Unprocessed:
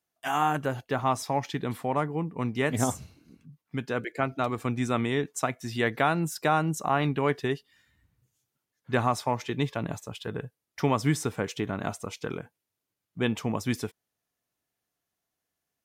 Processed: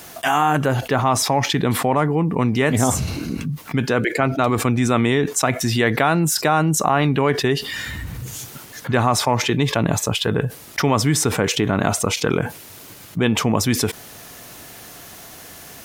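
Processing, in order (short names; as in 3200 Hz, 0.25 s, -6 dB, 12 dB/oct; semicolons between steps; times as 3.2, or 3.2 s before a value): fast leveller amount 70%; gain +5 dB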